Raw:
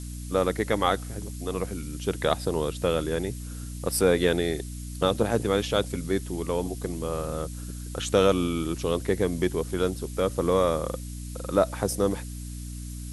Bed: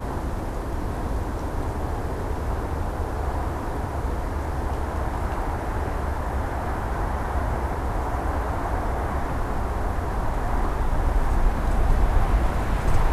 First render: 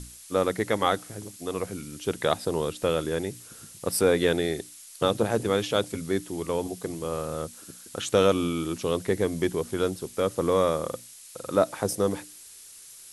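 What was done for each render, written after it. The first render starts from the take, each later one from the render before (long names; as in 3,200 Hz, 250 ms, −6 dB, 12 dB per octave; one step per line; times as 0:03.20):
mains-hum notches 60/120/180/240/300 Hz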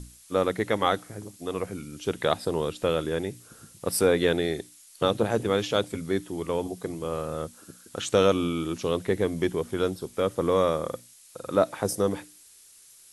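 noise reduction from a noise print 6 dB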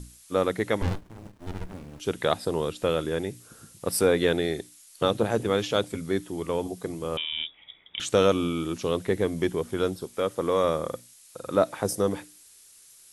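0:00.82–0:02.00: windowed peak hold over 65 samples
0:07.17–0:08.00: voice inversion scrambler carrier 3,600 Hz
0:10.04–0:10.64: low-shelf EQ 220 Hz −7 dB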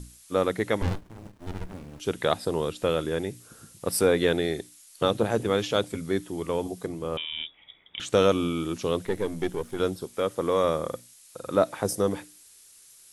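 0:06.86–0:08.13: high-shelf EQ 3,700 Hz −6.5 dB
0:09.05–0:09.80: gain on one half-wave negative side −7 dB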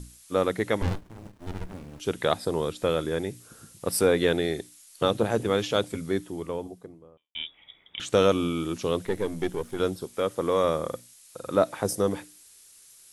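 0:02.35–0:03.25: notch filter 2,800 Hz
0:05.97–0:07.35: fade out and dull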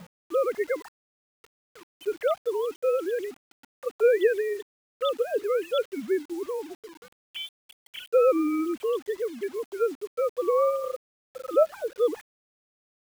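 three sine waves on the formant tracks
bit-depth reduction 8 bits, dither none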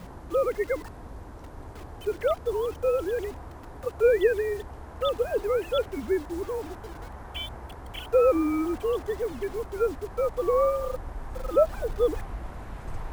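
mix in bed −15 dB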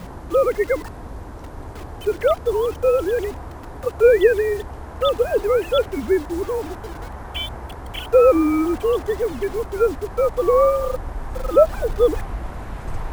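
level +7.5 dB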